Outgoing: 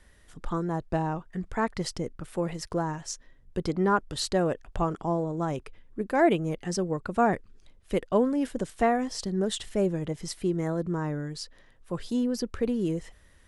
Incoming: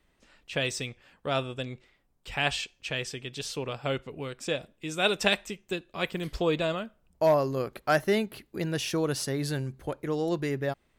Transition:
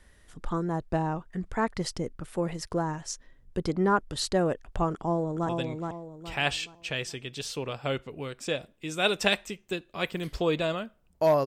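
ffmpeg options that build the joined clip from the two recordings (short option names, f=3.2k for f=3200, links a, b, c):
-filter_complex "[0:a]apad=whole_dur=11.46,atrim=end=11.46,atrim=end=5.492[a];[1:a]atrim=start=1.488:end=7.46[b];[a][b]acrossfade=d=0.004:c1=hsin:c2=hsin,asplit=2[c][d];[d]afade=t=in:st=4.94:d=0.01,afade=t=out:st=5.49:d=0.01,aecho=0:1:420|840|1260|1680:0.595662|0.208482|0.0729686|0.025539[e];[c][e]amix=inputs=2:normalize=0"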